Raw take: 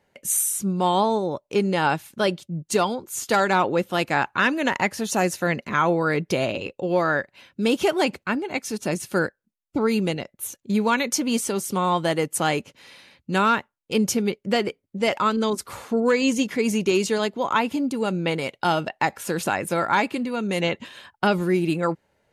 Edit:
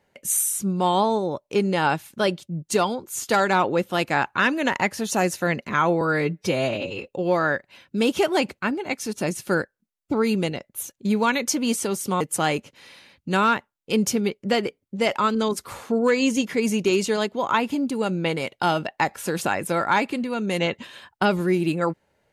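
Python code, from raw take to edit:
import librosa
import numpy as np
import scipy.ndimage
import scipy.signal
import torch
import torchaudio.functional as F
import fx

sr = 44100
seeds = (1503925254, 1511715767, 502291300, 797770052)

y = fx.edit(x, sr, fx.stretch_span(start_s=6.01, length_s=0.71, factor=1.5),
    fx.cut(start_s=11.85, length_s=0.37), tone=tone)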